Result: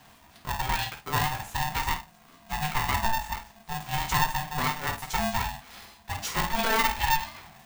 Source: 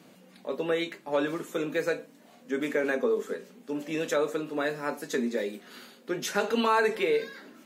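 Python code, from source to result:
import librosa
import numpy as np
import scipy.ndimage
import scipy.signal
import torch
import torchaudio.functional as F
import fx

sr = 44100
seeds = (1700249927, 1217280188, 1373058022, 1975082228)

y = scipy.signal.sosfilt(scipy.signal.butter(2, 270.0, 'highpass', fs=sr, output='sos'), x)
y = fx.room_early_taps(y, sr, ms=(13, 50, 63), db=(-6.5, -9.5, -15.0))
y = fx.rider(y, sr, range_db=4, speed_s=2.0)
y = y * np.sign(np.sin(2.0 * np.pi * 450.0 * np.arange(len(y)) / sr))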